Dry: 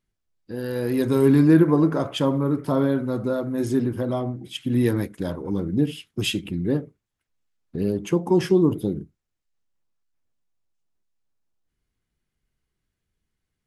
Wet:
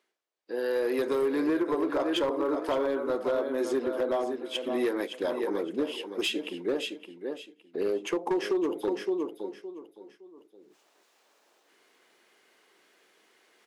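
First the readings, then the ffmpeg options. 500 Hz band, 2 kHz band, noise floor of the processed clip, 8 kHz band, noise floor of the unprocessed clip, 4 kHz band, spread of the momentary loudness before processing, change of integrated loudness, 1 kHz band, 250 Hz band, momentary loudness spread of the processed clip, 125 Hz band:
-3.0 dB, -1.5 dB, -68 dBFS, -6.0 dB, -81 dBFS, -2.0 dB, 13 LU, -7.5 dB, -1.5 dB, -10.0 dB, 11 LU, -28.5 dB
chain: -filter_complex "[0:a]highpass=f=380:w=0.5412,highpass=f=380:w=1.3066,asplit=2[a][b];[b]aecho=0:1:564|1128|1692:0.335|0.077|0.0177[c];[a][c]amix=inputs=2:normalize=0,acompressor=threshold=-26dB:ratio=10,lowpass=f=3.3k:p=1,equalizer=f=1.4k:t=o:w=0.3:g=-2,areverse,acompressor=mode=upward:threshold=-49dB:ratio=2.5,areverse,asoftclip=type=hard:threshold=-25dB,volume=3.5dB"

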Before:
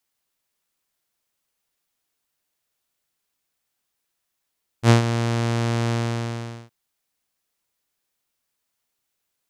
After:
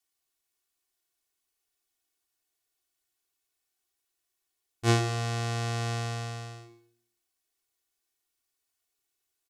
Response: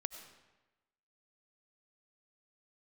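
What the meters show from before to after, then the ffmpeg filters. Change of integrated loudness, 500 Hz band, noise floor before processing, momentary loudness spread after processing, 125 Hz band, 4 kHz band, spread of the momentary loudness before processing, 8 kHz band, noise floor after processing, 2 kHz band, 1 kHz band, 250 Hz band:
-7.5 dB, -7.5 dB, -79 dBFS, 15 LU, -8.0 dB, -4.0 dB, 12 LU, -3.0 dB, -83 dBFS, -5.5 dB, -5.5 dB, -10.5 dB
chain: -filter_complex "[0:a]equalizer=f=8.5k:t=o:w=2.4:g=4,aecho=1:1:2.7:0.84,asplit=2[a][b];[b]equalizer=f=370:t=o:w=0.6:g=11.5[c];[1:a]atrim=start_sample=2205,asetrate=74970,aresample=44100,adelay=110[d];[c][d]afir=irnorm=-1:irlink=0,volume=-7dB[e];[a][e]amix=inputs=2:normalize=0,volume=-9dB"

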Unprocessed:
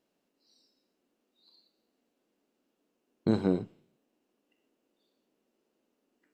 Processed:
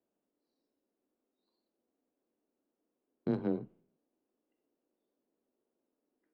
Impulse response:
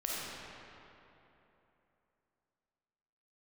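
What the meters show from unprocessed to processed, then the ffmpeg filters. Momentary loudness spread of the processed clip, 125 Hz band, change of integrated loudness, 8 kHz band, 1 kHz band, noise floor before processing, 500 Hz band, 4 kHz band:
12 LU, -7.5 dB, -6.0 dB, n/a, -6.5 dB, -80 dBFS, -5.5 dB, under -15 dB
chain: -af "adynamicsmooth=sensitivity=1.5:basefreq=1.6k,afreqshift=16,volume=-6dB"

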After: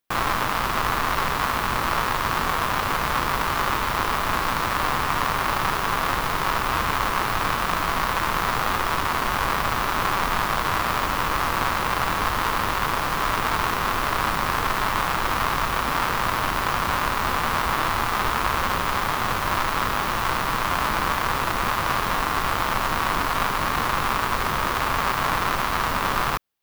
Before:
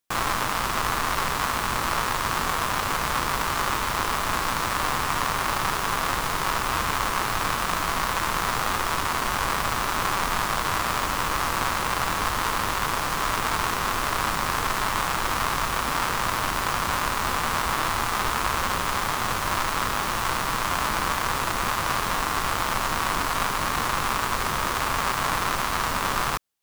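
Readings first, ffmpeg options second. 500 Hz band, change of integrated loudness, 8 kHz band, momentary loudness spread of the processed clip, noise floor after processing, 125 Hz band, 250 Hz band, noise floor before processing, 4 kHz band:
+2.5 dB, +1.5 dB, -4.0 dB, 1 LU, -26 dBFS, +2.5 dB, +2.5 dB, -27 dBFS, 0.0 dB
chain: -af "equalizer=f=7.9k:w=0.8:g=-7.5,volume=2.5dB"

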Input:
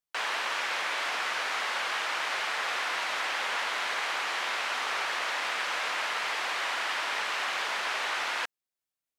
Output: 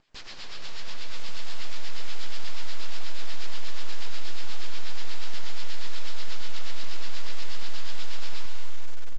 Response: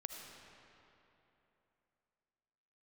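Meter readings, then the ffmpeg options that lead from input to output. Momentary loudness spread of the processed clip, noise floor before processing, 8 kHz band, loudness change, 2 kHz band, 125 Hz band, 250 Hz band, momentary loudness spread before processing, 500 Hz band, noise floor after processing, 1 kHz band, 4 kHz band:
1 LU, under -85 dBFS, -6.0 dB, -10.5 dB, -14.5 dB, n/a, +1.5 dB, 0 LU, -10.0 dB, -31 dBFS, -15.5 dB, -6.0 dB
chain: -filter_complex "[0:a]acrossover=split=940|2000[a][b][c];[a]acompressor=threshold=-45dB:ratio=4[d];[b]acompressor=threshold=-39dB:ratio=4[e];[c]acompressor=threshold=-50dB:ratio=4[f];[d][e][f]amix=inputs=3:normalize=0,equalizer=f=3.9k:w=1:g=-10,acrossover=split=180|2000[g][h][i];[h]acompressor=mode=upward:threshold=-52dB:ratio=2.5[j];[g][j][i]amix=inputs=3:normalize=0,aexciter=amount=5.1:drive=4.4:freq=2.2k,aresample=11025,aeval=exprs='abs(val(0))':c=same,aresample=44100,acrossover=split=1900[k][l];[k]aeval=exprs='val(0)*(1-0.7/2+0.7/2*cos(2*PI*8.3*n/s))':c=same[m];[l]aeval=exprs='val(0)*(1-0.7/2-0.7/2*cos(2*PI*8.3*n/s))':c=same[n];[m][n]amix=inputs=2:normalize=0,aeval=exprs='clip(val(0),-1,0.00631)':c=same,asplit=2[o][p];[p]adelay=228,lowpass=f=3.8k:p=1,volume=-13.5dB,asplit=2[q][r];[r]adelay=228,lowpass=f=3.8k:p=1,volume=0.2[s];[o][q][s]amix=inputs=3:normalize=0[t];[1:a]atrim=start_sample=2205,asetrate=25137,aresample=44100[u];[t][u]afir=irnorm=-1:irlink=0,volume=8dB" -ar 16000 -c:a pcm_mulaw

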